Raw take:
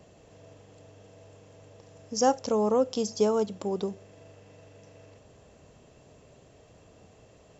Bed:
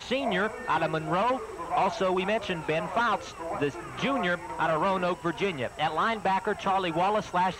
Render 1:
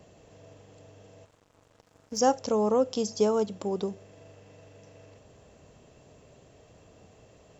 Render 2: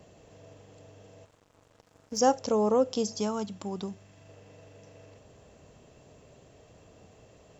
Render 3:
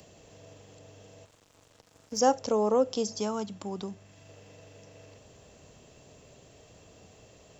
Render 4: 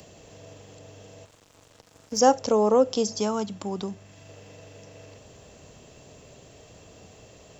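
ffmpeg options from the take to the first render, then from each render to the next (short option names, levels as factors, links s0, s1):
-filter_complex "[0:a]asettb=1/sr,asplit=3[s0][s1][s2];[s0]atrim=end=1.254[s3];[s1]atrim=start=1.25:end=2.2,asetpts=PTS-STARTPTS,afade=t=in:d=0.004:c=qsin,afade=t=out:st=0.946:d=0.004:c=qsin,aeval=exprs='sgn(val(0))*max(abs(val(0))-0.00282,0)':c=same[s4];[s2]atrim=start=2.196[s5];[s3][s4]acrossfade=d=0.004:c1=hsin:c2=qsin[s6];[s6][s5]acrossfade=d=0.004:c1=qsin:c2=hsin"
-filter_complex "[0:a]asettb=1/sr,asplit=3[s0][s1][s2];[s0]atrim=end=3.194[s3];[s1]atrim=start=3.19:end=4.29,asetpts=PTS-STARTPTS,afade=t=in:d=0.004:c=qsin,afade=t=out:st=1.096:d=0.004:c=qsin,equalizer=f=470:w=1.5:g=-11[s4];[s2]atrim=start=4.286[s5];[s3][s4]acrossfade=d=0.004:c1=hsin:c2=qsin[s6];[s6][s5]acrossfade=d=0.004:c1=qsin:c2=hsin"
-filter_complex "[0:a]acrossover=split=210|2600[s0][s1][s2];[s0]alimiter=level_in=6.31:limit=0.0631:level=0:latency=1,volume=0.158[s3];[s2]acompressor=mode=upward:threshold=0.00178:ratio=2.5[s4];[s3][s1][s4]amix=inputs=3:normalize=0"
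-af "volume=1.78"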